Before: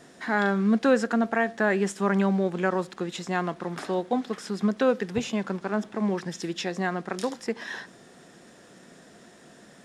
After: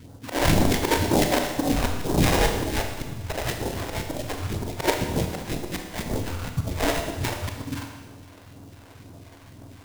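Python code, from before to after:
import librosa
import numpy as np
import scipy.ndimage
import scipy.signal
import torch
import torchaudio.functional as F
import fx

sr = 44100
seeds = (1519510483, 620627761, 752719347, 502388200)

y = fx.octave_mirror(x, sr, pivot_hz=690.0)
y = fx.dynamic_eq(y, sr, hz=880.0, q=0.97, threshold_db=-39.0, ratio=4.0, max_db=3)
y = fx.sample_hold(y, sr, seeds[0], rate_hz=1300.0, jitter_pct=20)
y = fx.phaser_stages(y, sr, stages=2, low_hz=130.0, high_hz=2500.0, hz=2.0, feedback_pct=5)
y = fx.auto_swell(y, sr, attack_ms=165.0)
y = fx.rev_schroeder(y, sr, rt60_s=1.3, comb_ms=25, drr_db=4.0)
y = y * librosa.db_to_amplitude(7.0)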